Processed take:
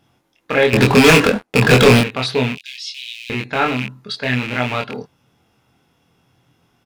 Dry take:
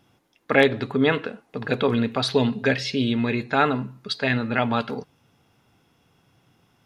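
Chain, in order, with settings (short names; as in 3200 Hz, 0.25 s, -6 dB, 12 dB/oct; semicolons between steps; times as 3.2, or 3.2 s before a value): rattling part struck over -29 dBFS, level -15 dBFS; 0.73–2.01 sample leveller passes 5; 2.55–3.3 inverse Chebyshev high-pass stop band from 1200 Hz, stop band 50 dB; doubler 24 ms -2.5 dB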